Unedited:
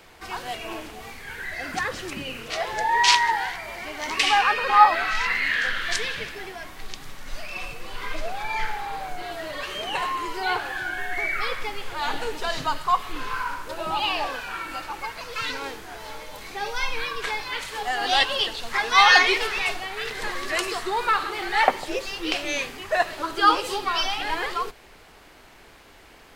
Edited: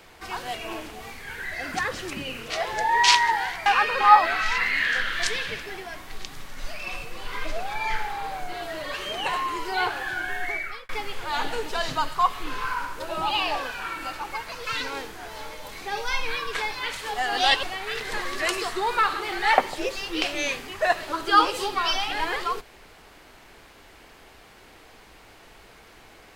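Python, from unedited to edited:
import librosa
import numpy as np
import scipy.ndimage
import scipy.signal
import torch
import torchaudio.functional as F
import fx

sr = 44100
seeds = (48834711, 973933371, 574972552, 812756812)

y = fx.edit(x, sr, fx.cut(start_s=3.66, length_s=0.69),
    fx.fade_out_span(start_s=11.1, length_s=0.48),
    fx.cut(start_s=18.32, length_s=1.41), tone=tone)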